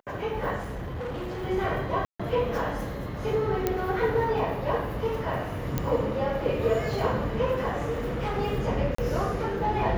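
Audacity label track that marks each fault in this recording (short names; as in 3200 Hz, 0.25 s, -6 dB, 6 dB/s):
0.600000	1.450000	clipped -30.5 dBFS
2.050000	2.190000	gap 0.145 s
3.670000	3.670000	pop -11 dBFS
5.780000	5.780000	pop -12 dBFS
7.900000	8.390000	clipped -25.5 dBFS
8.950000	8.980000	gap 34 ms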